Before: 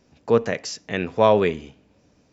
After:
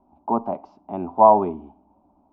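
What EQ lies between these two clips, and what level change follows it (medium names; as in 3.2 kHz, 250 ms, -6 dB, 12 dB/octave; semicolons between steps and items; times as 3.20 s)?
resonant low-pass 880 Hz, resonance Q 4; distance through air 120 m; static phaser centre 480 Hz, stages 6; 0.0 dB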